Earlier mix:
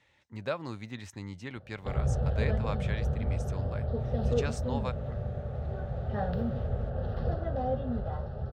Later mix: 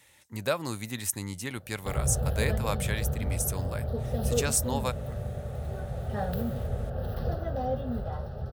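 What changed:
speech +4.0 dB; master: remove distance through air 180 m

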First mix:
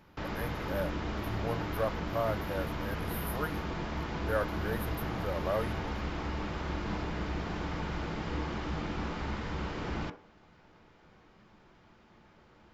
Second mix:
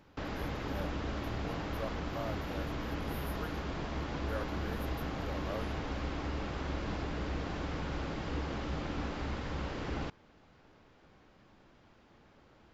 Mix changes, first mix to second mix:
speech -9.5 dB; reverb: off

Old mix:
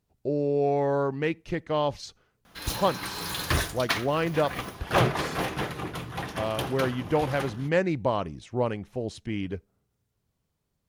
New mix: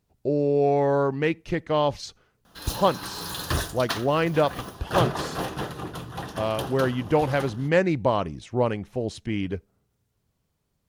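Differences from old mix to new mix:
speech +3.5 dB; background: add peaking EQ 2.2 kHz -12.5 dB 0.36 oct

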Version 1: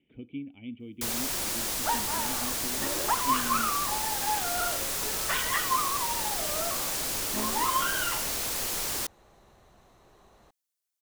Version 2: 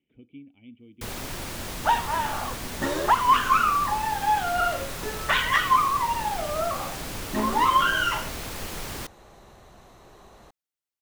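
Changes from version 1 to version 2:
speech -7.5 dB; first sound: add tone controls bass +8 dB, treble -9 dB; second sound +8.0 dB

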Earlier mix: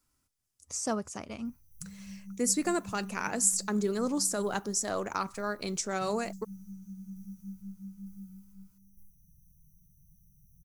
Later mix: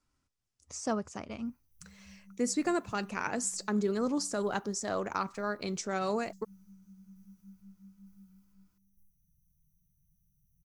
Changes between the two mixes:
speech: add distance through air 83 m; background -10.5 dB

